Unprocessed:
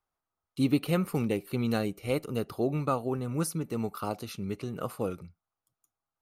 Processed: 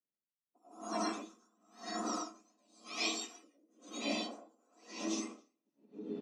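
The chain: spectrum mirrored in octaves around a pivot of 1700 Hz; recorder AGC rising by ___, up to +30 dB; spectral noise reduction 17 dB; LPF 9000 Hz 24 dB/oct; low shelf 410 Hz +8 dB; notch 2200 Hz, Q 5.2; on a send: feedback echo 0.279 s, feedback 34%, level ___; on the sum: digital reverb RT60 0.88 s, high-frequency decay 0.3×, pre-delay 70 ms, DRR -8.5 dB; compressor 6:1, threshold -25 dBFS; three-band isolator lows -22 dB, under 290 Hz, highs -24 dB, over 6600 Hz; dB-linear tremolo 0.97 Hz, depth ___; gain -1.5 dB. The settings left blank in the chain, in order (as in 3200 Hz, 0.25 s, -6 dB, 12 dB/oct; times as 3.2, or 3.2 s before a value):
42 dB/s, -19 dB, 38 dB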